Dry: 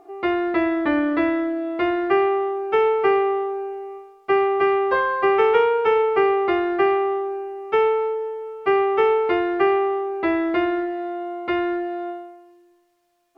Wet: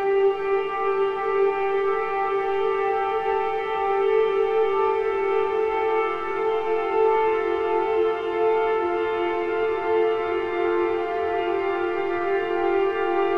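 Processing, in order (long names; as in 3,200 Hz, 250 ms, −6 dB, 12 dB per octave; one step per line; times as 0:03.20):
gain on one half-wave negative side −3 dB
extreme stretch with random phases 15×, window 1.00 s, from 0:08.66
level −2 dB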